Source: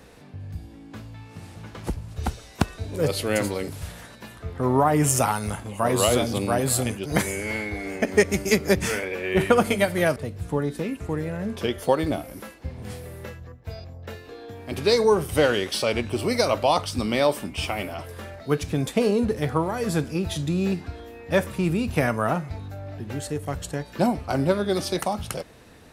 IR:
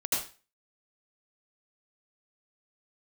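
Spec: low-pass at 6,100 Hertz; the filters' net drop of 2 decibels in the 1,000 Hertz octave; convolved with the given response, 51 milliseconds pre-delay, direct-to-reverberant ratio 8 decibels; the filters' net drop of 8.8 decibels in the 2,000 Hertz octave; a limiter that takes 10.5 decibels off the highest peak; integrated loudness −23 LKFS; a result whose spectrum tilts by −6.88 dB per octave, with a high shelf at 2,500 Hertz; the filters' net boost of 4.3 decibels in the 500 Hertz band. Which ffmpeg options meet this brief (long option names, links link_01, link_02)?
-filter_complex "[0:a]lowpass=6100,equalizer=frequency=500:width_type=o:gain=6.5,equalizer=frequency=1000:width_type=o:gain=-3.5,equalizer=frequency=2000:width_type=o:gain=-8,highshelf=frequency=2500:gain=-5,alimiter=limit=-13.5dB:level=0:latency=1,asplit=2[link_01][link_02];[1:a]atrim=start_sample=2205,adelay=51[link_03];[link_02][link_03]afir=irnorm=-1:irlink=0,volume=-15dB[link_04];[link_01][link_04]amix=inputs=2:normalize=0,volume=2dB"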